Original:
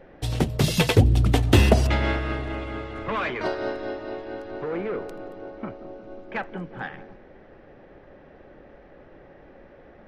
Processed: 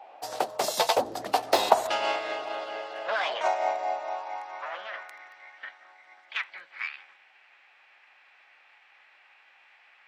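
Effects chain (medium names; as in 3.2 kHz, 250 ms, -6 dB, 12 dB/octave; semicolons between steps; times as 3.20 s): formant shift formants +6 st; high-pass sweep 690 Hz -> 1.8 kHz, 3.93–5.38 s; trim -4 dB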